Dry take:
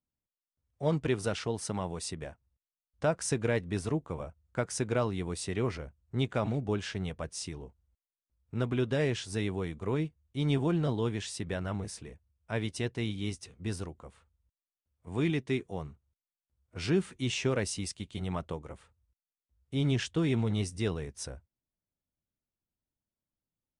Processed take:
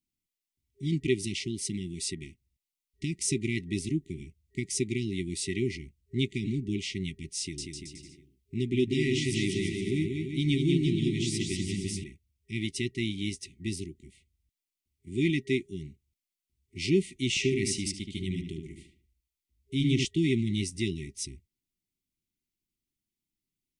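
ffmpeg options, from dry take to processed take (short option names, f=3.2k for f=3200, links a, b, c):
-filter_complex "[0:a]asettb=1/sr,asplit=3[a][b][c];[a]atrim=end=7.394[d];[b]atrim=start=7.39:end=12.04,asetpts=PTS-STARTPTS,afade=t=in:d=0.004:c=qsin,afade=t=out:st=4.646:d=0.004:c=qsin,aecho=1:1:190|342|463.6|560.9|638.7|701:0.631|0.398|0.251|0.158|0.1|0.0631,atrim=end_sample=205065[e];[c]atrim=start=12.036[f];[d][e]acrossfade=d=0.004:c1=hsin:c2=qsin[g];[g][f]acrossfade=d=0.004:c1=qsin:c2=hsin,asettb=1/sr,asplit=3[h][i][j];[h]atrim=end=17.294[k];[i]atrim=start=17.29:end=20.05,asetpts=PTS-STARTPTS,afade=t=in:d=0.004:c=qsin,afade=t=out:st=2.756:d=0.004:c=qsin,asplit=2[l][m];[m]adelay=74,lowpass=f=2.1k:p=1,volume=-4dB,asplit=2[n][o];[o]adelay=74,lowpass=f=2.1k:p=1,volume=0.35,asplit=2[p][q];[q]adelay=74,lowpass=f=2.1k:p=1,volume=0.35,asplit=2[r][s];[s]adelay=74,lowpass=f=2.1k:p=1,volume=0.35[t];[l][n][p][r][t]amix=inputs=5:normalize=0,atrim=end_sample=121716[u];[j]atrim=start=20.046[v];[k][u]acrossfade=d=0.004:c1=hsin:c2=qsin[w];[w][v]acrossfade=d=0.004:c1=qsin:c2=hsin,afftfilt=real='re*(1-between(b*sr/4096,400,1900))':imag='im*(1-between(b*sr/4096,400,1900))':win_size=4096:overlap=0.75,equalizer=f=79:t=o:w=2.1:g=-7,acontrast=24"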